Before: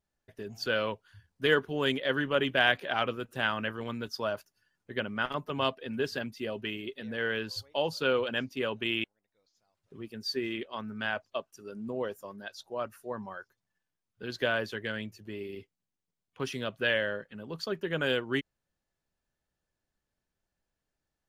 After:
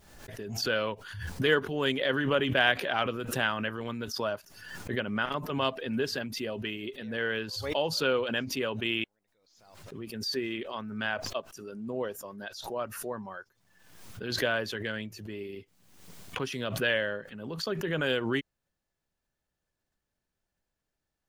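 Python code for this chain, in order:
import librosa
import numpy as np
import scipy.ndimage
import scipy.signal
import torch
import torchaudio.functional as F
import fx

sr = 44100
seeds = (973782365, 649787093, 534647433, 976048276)

y = fx.pre_swell(x, sr, db_per_s=54.0)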